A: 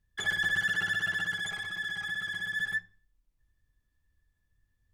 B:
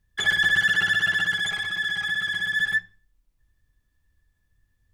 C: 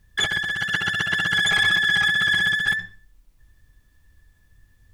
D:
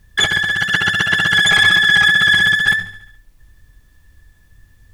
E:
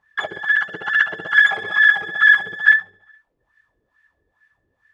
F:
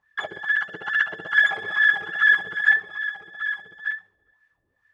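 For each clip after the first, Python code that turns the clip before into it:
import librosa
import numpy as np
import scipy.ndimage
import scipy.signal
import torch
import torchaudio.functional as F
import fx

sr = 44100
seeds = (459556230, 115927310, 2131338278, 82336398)

y1 = fx.dynamic_eq(x, sr, hz=2900.0, q=0.85, threshold_db=-44.0, ratio=4.0, max_db=5)
y1 = F.gain(torch.from_numpy(y1), 5.5).numpy()
y2 = fx.over_compress(y1, sr, threshold_db=-29.0, ratio=-1.0)
y2 = F.gain(torch.from_numpy(y2), 7.0).numpy()
y3 = fx.echo_feedback(y2, sr, ms=71, feedback_pct=59, wet_db=-16.5)
y3 = F.gain(torch.from_numpy(y3), 7.5).numpy()
y4 = fx.wah_lfo(y3, sr, hz=2.3, low_hz=410.0, high_hz=1800.0, q=3.4)
y4 = F.gain(torch.from_numpy(y4), 3.5).numpy()
y5 = y4 + 10.0 ** (-10.5 / 20.0) * np.pad(y4, (int(1191 * sr / 1000.0), 0))[:len(y4)]
y5 = F.gain(torch.from_numpy(y5), -5.0).numpy()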